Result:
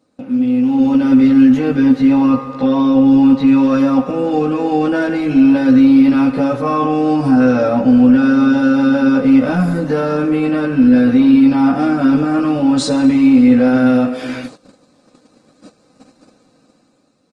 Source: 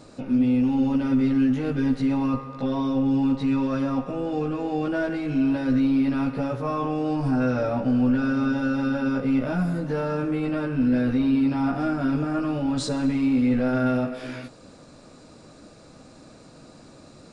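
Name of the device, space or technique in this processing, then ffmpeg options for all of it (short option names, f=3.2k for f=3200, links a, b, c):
video call: -filter_complex "[0:a]asettb=1/sr,asplit=3[a][b][c];[a]atrim=end=1.584[d];[b]atrim=start=1.58:end=3.63,asetpts=PTS-STARTPTS,afade=t=in:d=0.004:c=qsin,afade=t=out:st=2.046:d=0.004:c=qsin,acrossover=split=4200[e][f];[f]acompressor=threshold=-58dB:ratio=4:attack=1:release=60[g];[e][g]amix=inputs=2:normalize=0[h];[c]atrim=start=3.626[i];[d][h]acrossfade=d=0.004:c1=hsin:c2=qsin[j];[j][i]acrossfade=d=0.004:c1=qsin:c2=hsin,highpass=f=100:w=0.5412,highpass=f=100:w=1.3066,aecho=1:1:3.9:0.43,dynaudnorm=f=220:g=7:m=9dB,agate=range=-16dB:threshold=-35dB:ratio=16:detection=peak,volume=1.5dB" -ar 48000 -c:a libopus -b:a 24k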